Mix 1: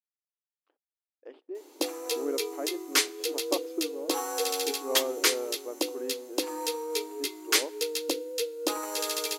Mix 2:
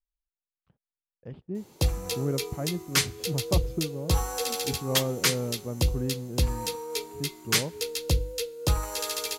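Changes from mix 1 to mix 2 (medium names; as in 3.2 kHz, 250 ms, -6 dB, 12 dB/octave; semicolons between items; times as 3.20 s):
background: add peaking EQ 220 Hz -13 dB 0.92 oct; master: remove brick-wall FIR high-pass 270 Hz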